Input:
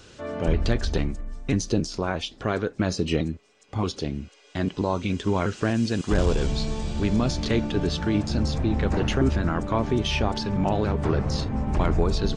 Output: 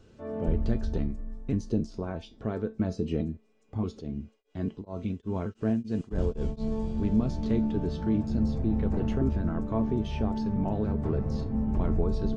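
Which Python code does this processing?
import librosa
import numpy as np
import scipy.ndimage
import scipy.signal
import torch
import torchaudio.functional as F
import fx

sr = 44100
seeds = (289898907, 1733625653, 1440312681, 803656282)

y = fx.tilt_shelf(x, sr, db=8.5, hz=890.0)
y = fx.comb_fb(y, sr, f0_hz=220.0, decay_s=0.24, harmonics='all', damping=0.0, mix_pct=70)
y = fx.tremolo_abs(y, sr, hz=fx.line((4.0, 1.9), (6.7, 4.9)), at=(4.0, 6.7), fade=0.02)
y = F.gain(torch.from_numpy(y), -3.5).numpy()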